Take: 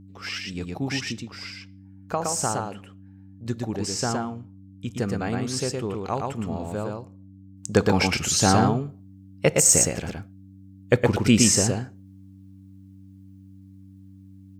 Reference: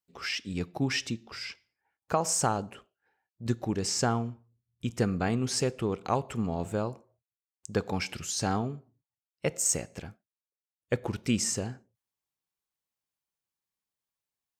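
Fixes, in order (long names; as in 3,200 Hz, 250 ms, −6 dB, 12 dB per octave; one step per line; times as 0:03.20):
hum removal 96.2 Hz, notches 3
echo removal 115 ms −3 dB
level correction −9.5 dB, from 0:07.57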